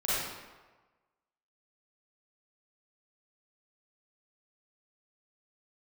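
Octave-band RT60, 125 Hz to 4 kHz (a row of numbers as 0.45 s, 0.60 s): 1.2 s, 1.1 s, 1.3 s, 1.3 s, 1.1 s, 0.85 s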